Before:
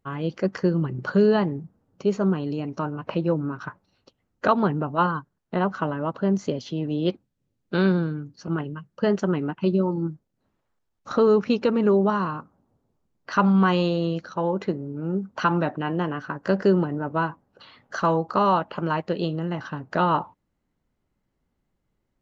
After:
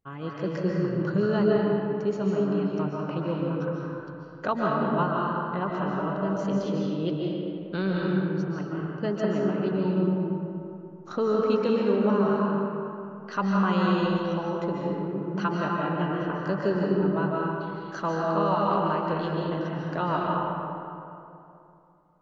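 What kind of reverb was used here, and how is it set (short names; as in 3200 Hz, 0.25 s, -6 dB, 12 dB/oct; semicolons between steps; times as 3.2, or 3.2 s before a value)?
digital reverb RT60 2.8 s, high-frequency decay 0.5×, pre-delay 0.105 s, DRR -3.5 dB; gain -7.5 dB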